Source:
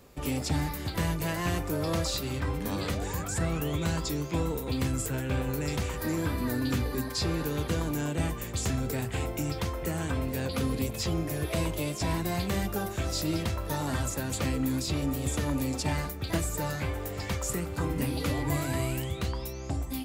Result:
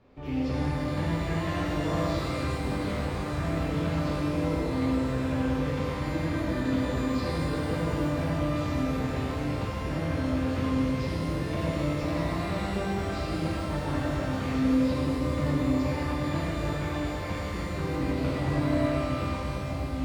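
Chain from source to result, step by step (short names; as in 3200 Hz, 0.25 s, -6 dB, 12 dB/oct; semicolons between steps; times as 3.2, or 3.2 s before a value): air absorption 270 m; shimmer reverb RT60 3.2 s, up +12 st, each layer -8 dB, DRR -7.5 dB; gain -6.5 dB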